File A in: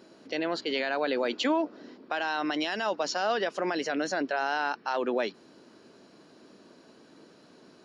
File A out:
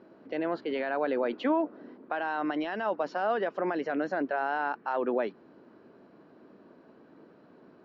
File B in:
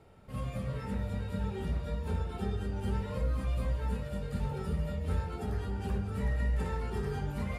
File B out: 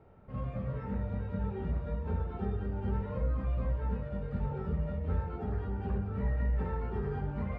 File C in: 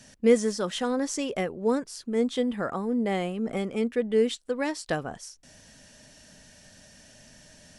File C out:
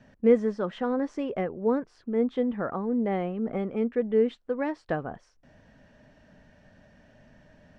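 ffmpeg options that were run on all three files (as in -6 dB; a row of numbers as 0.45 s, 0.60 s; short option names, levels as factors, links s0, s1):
-af "lowpass=1600"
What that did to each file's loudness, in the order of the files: -1.0 LU, 0.0 LU, -0.5 LU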